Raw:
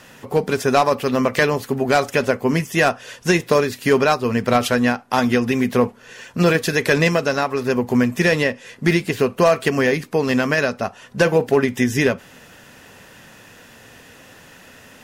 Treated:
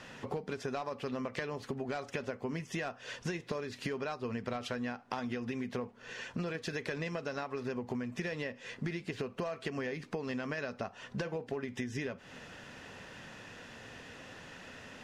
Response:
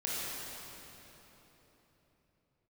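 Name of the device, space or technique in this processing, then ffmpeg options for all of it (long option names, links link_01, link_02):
serial compression, peaks first: -af "lowpass=5600,acompressor=threshold=-25dB:ratio=6,acompressor=threshold=-33dB:ratio=2,volume=-4.5dB"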